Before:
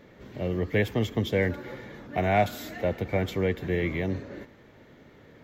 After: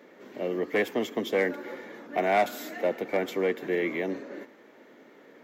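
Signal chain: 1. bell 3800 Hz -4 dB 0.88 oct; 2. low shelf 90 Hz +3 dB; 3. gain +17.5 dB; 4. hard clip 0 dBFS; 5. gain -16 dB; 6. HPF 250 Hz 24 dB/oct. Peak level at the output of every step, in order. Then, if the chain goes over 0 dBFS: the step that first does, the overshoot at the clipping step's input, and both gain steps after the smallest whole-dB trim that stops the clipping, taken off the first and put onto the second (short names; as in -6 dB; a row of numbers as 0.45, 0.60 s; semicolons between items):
-11.0, -11.0, +6.5, 0.0, -16.0, -12.0 dBFS; step 3, 6.5 dB; step 3 +10.5 dB, step 5 -9 dB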